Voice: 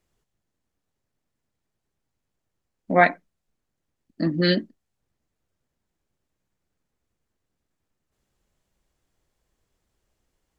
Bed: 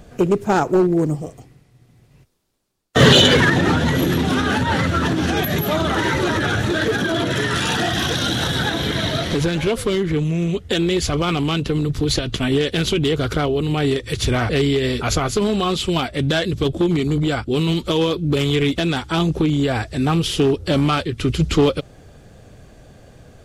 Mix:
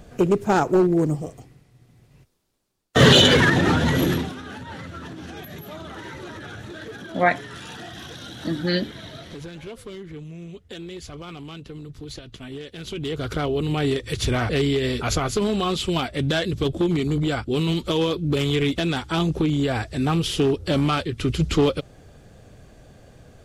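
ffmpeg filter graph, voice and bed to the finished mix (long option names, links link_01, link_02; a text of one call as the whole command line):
ffmpeg -i stem1.wav -i stem2.wav -filter_complex "[0:a]adelay=4250,volume=-2.5dB[link_01];[1:a]volume=12dB,afade=type=out:start_time=4.09:duration=0.24:silence=0.16788,afade=type=in:start_time=12.78:duration=0.8:silence=0.199526[link_02];[link_01][link_02]amix=inputs=2:normalize=0" out.wav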